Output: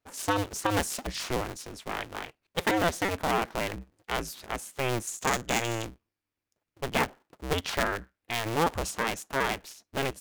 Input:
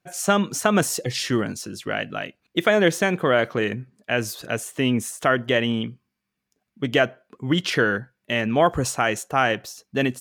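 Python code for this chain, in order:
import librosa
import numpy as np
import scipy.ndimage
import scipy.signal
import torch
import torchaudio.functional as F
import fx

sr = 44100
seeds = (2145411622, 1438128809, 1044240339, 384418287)

y = fx.cycle_switch(x, sr, every=2, mode='inverted')
y = fx.peak_eq(y, sr, hz=6900.0, db=12.5, octaves=0.38, at=(5.07, 5.85))
y = y * 10.0 ** (-8.0 / 20.0)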